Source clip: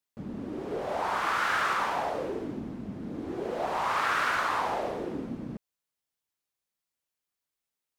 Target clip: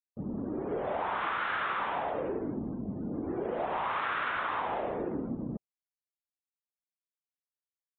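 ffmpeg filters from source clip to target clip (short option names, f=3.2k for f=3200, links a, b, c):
-af "afftdn=nr=27:nf=-50,acompressor=threshold=-31dB:ratio=6,aresample=8000,aresample=44100,volume=2dB"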